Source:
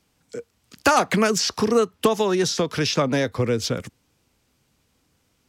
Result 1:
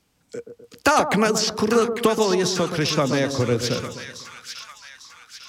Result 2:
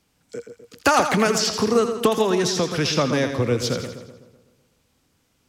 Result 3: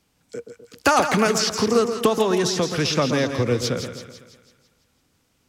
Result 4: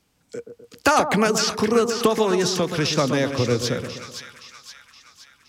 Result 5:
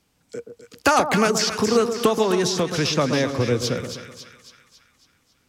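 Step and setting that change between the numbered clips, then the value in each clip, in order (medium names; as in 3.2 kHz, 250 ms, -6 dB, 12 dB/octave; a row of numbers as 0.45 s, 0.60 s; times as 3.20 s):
two-band feedback delay, highs: 849 ms, 83 ms, 166 ms, 520 ms, 275 ms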